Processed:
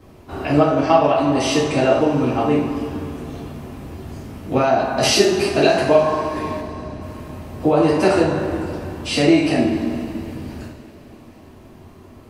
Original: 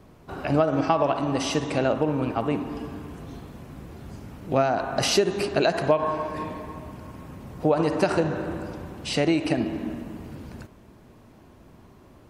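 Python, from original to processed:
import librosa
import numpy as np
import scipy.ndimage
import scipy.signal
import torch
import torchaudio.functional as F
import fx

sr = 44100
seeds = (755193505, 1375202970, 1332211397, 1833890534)

y = fx.air_absorb(x, sr, metres=400.0, at=(6.59, 7.0), fade=0.02)
y = fx.rev_double_slope(y, sr, seeds[0], early_s=0.49, late_s=4.4, knee_db=-22, drr_db=-6.0)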